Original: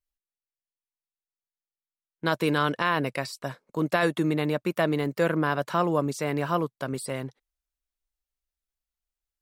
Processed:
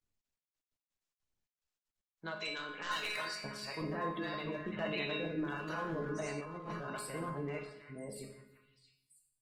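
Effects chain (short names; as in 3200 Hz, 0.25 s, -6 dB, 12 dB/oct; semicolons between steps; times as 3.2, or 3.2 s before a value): reverse delay 0.69 s, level -1 dB; harmonic tremolo 1.5 Hz, depth 70%, crossover 600 Hz; limiter -21.5 dBFS, peak gain reduction 11 dB; delay with a stepping band-pass 0.328 s, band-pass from 1500 Hz, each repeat 1.4 oct, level -6.5 dB; spectral gate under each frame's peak -25 dB strong; 2.41–3.42 weighting filter ITU-R 468; wavefolder -22 dBFS; 4.66–5.15 bell 3300 Hz +10.5 dB 1.6 oct; resonator 210 Hz, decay 0.59 s, harmonics all, mix 90%; shoebox room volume 220 m³, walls mixed, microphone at 0.58 m; 6.4–6.91 negative-ratio compressor -50 dBFS, ratio -1; gain +6.5 dB; Opus 20 kbps 48000 Hz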